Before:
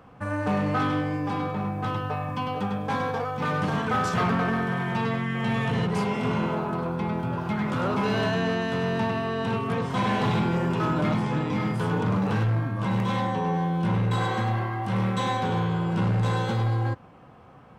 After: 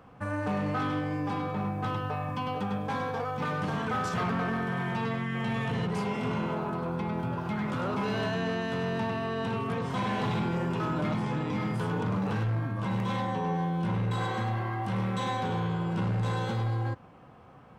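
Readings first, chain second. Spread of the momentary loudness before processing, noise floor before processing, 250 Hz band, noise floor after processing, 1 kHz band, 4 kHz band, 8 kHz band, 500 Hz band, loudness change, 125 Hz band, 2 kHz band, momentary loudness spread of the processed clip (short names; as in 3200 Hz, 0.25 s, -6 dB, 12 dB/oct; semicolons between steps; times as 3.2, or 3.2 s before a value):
5 LU, -50 dBFS, -4.5 dB, -52 dBFS, -4.5 dB, -4.5 dB, -5.0 dB, -4.5 dB, -4.5 dB, -4.5 dB, -4.5 dB, 3 LU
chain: limiter -21.5 dBFS, peak gain reduction 4 dB; gain -2.5 dB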